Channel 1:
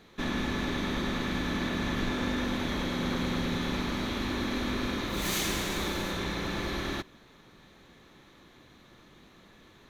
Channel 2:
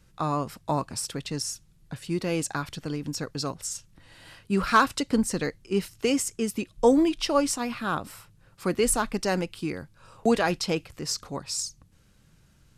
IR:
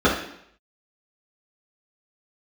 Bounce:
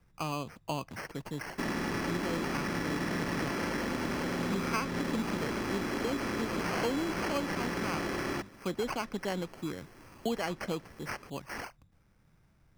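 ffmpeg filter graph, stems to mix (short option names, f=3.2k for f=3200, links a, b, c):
-filter_complex "[0:a]bandreject=f=50:t=h:w=6,bandreject=f=100:t=h:w=6,bandreject=f=150:t=h:w=6,bandreject=f=200:t=h:w=6,bandreject=f=250:t=h:w=6,adelay=1400,volume=1.5dB[a];[1:a]highshelf=f=8.8k:g=-7.5,volume=-6dB[b];[a][b]amix=inputs=2:normalize=0,acrusher=samples=12:mix=1:aa=0.000001,acrossover=split=97|6700[c][d][e];[c]acompressor=threshold=-53dB:ratio=4[f];[d]acompressor=threshold=-29dB:ratio=4[g];[e]acompressor=threshold=-53dB:ratio=4[h];[f][g][h]amix=inputs=3:normalize=0"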